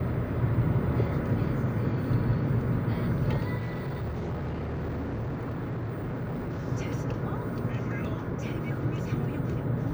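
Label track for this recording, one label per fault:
3.570000	6.650000	clipping −29.5 dBFS

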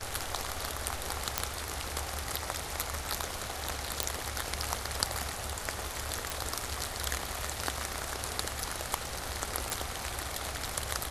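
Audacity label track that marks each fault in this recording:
1.380000	1.380000	click −7 dBFS
4.030000	4.030000	click
6.300000	6.300000	click
9.700000	9.700000	click

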